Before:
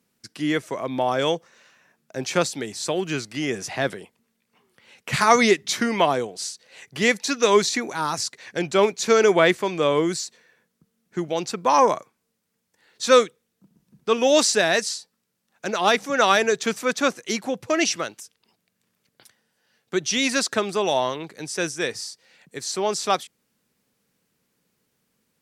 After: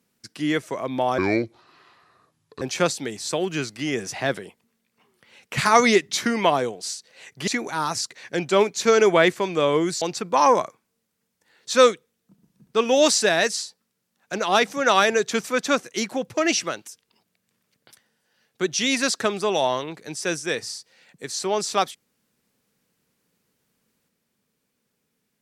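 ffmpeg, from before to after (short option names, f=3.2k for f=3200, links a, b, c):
-filter_complex "[0:a]asplit=5[a][b][c][d][e];[a]atrim=end=1.184[f];[b]atrim=start=1.18:end=2.17,asetpts=PTS-STARTPTS,asetrate=30429,aresample=44100[g];[c]atrim=start=2.166:end=7.032[h];[d]atrim=start=7.698:end=10.242[i];[e]atrim=start=11.338[j];[f][g]acrossfade=d=0.004:c1=hsin:c2=hsin[k];[k][h]acrossfade=d=0.004:c1=hsin:c2=hsin[l];[l][i]acrossfade=d=0.004:c1=hsin:c2=hsin[m];[m][j]acrossfade=d=0.004:c1=hsin:c2=hsin"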